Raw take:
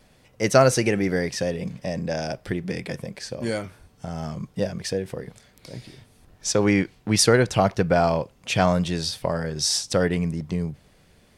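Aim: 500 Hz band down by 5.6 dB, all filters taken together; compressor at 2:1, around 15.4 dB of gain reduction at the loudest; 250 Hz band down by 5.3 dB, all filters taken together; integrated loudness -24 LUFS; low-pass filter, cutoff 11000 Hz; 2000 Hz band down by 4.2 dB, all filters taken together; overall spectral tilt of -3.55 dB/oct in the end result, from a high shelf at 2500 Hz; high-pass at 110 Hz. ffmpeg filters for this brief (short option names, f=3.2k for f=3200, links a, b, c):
-af "highpass=110,lowpass=11k,equalizer=f=250:t=o:g=-6,equalizer=f=500:t=o:g=-5.5,equalizer=f=2k:t=o:g=-7,highshelf=f=2.5k:g=4,acompressor=threshold=-43dB:ratio=2,volume=14.5dB"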